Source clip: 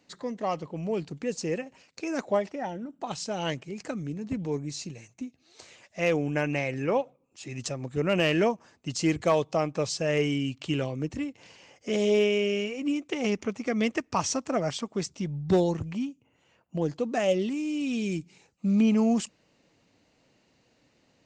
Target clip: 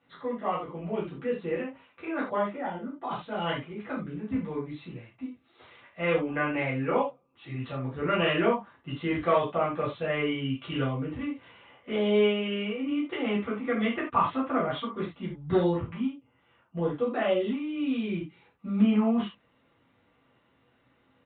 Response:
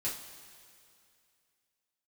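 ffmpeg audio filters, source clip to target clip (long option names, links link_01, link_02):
-filter_complex "[0:a]equalizer=frequency=1200:width=1.7:gain=10[link_01];[1:a]atrim=start_sample=2205,atrim=end_sample=3528,asetrate=34398,aresample=44100[link_02];[link_01][link_02]afir=irnorm=-1:irlink=0,aresample=8000,aresample=44100,volume=-6dB"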